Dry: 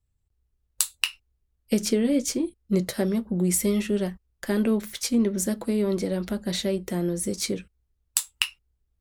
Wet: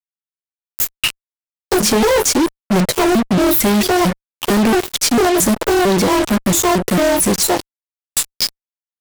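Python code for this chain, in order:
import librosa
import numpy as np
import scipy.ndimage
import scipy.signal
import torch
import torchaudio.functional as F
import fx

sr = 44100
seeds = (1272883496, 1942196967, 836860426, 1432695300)

y = fx.pitch_trill(x, sr, semitones=10.0, every_ms=225)
y = fx.fuzz(y, sr, gain_db=41.0, gate_db=-36.0)
y = y * 10.0 ** (2.0 / 20.0)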